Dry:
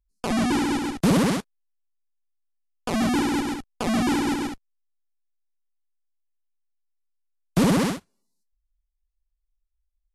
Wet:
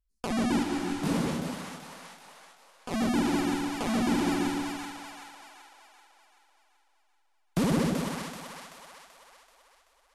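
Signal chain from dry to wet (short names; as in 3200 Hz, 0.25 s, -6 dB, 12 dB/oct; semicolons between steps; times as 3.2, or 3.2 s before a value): in parallel at -2 dB: compressor, threshold -27 dBFS, peak gain reduction 11 dB; on the sum: split-band echo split 660 Hz, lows 0.144 s, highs 0.383 s, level -3 dB; 0.62–2.9 detuned doubles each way 34 cents -> 20 cents; gain -9 dB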